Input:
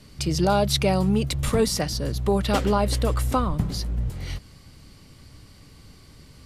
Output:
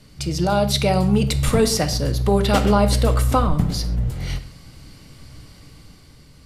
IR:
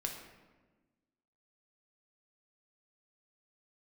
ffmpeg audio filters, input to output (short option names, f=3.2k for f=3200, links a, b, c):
-filter_complex "[0:a]dynaudnorm=f=240:g=7:m=5dB,asplit=2[a][b];[1:a]atrim=start_sample=2205,afade=t=out:st=0.19:d=0.01,atrim=end_sample=8820[c];[b][c]afir=irnorm=-1:irlink=0,volume=1dB[d];[a][d]amix=inputs=2:normalize=0,volume=-6dB"